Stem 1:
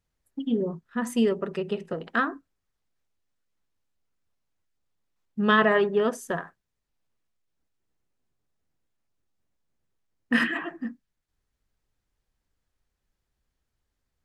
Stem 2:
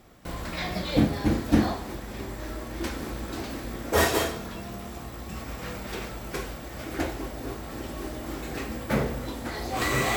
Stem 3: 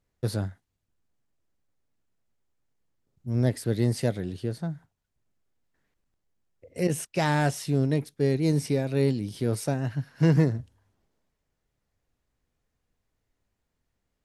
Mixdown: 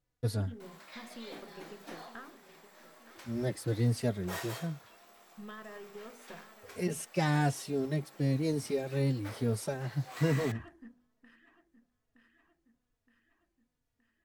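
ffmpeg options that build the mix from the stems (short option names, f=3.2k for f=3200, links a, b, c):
-filter_complex "[0:a]aeval=exprs='if(lt(val(0),0),0.708*val(0),val(0))':c=same,bandreject=f=48.59:t=h:w=4,bandreject=f=97.18:t=h:w=4,bandreject=f=145.77:t=h:w=4,bandreject=f=194.36:t=h:w=4,bandreject=f=242.95:t=h:w=4,bandreject=f=291.54:t=h:w=4,bandreject=f=340.13:t=h:w=4,bandreject=f=388.72:t=h:w=4,bandreject=f=437.31:t=h:w=4,bandreject=f=485.9:t=h:w=4,bandreject=f=534.49:t=h:w=4,bandreject=f=583.08:t=h:w=4,acompressor=threshold=-28dB:ratio=6,volume=-16dB,asplit=2[a][b];[b]volume=-13.5dB[c];[1:a]highpass=650,adelay=350,volume=-15.5dB[d];[2:a]asplit=2[e][f];[f]adelay=3.5,afreqshift=-1.1[g];[e][g]amix=inputs=2:normalize=1,volume=-2.5dB[h];[c]aecho=0:1:919|1838|2757|3676|4595|5514|6433|7352:1|0.54|0.292|0.157|0.085|0.0459|0.0248|0.0134[i];[a][d][h][i]amix=inputs=4:normalize=0"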